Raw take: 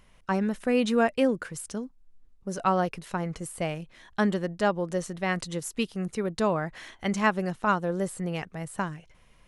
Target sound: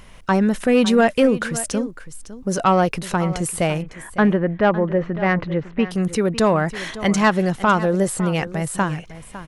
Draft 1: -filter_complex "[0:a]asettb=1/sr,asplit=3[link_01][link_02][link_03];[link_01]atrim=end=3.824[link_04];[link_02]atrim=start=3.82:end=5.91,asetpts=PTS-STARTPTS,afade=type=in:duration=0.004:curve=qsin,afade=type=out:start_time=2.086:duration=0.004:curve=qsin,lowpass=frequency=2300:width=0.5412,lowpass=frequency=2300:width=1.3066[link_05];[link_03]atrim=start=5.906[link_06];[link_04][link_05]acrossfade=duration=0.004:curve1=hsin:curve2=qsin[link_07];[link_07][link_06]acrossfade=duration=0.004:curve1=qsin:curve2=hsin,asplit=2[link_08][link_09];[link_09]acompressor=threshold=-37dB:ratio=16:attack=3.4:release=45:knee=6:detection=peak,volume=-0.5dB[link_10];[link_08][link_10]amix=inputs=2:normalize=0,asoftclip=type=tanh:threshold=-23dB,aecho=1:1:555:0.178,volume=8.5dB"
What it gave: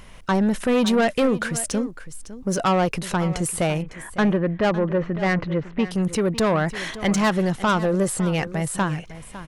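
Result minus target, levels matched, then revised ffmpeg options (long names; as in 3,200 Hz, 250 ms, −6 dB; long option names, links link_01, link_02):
soft clipping: distortion +9 dB
-filter_complex "[0:a]asettb=1/sr,asplit=3[link_01][link_02][link_03];[link_01]atrim=end=3.824[link_04];[link_02]atrim=start=3.82:end=5.91,asetpts=PTS-STARTPTS,afade=type=in:duration=0.004:curve=qsin,afade=type=out:start_time=2.086:duration=0.004:curve=qsin,lowpass=frequency=2300:width=0.5412,lowpass=frequency=2300:width=1.3066[link_05];[link_03]atrim=start=5.906[link_06];[link_04][link_05]acrossfade=duration=0.004:curve1=hsin:curve2=qsin[link_07];[link_07][link_06]acrossfade=duration=0.004:curve1=qsin:curve2=hsin,asplit=2[link_08][link_09];[link_09]acompressor=threshold=-37dB:ratio=16:attack=3.4:release=45:knee=6:detection=peak,volume=-0.5dB[link_10];[link_08][link_10]amix=inputs=2:normalize=0,asoftclip=type=tanh:threshold=-14.5dB,aecho=1:1:555:0.178,volume=8.5dB"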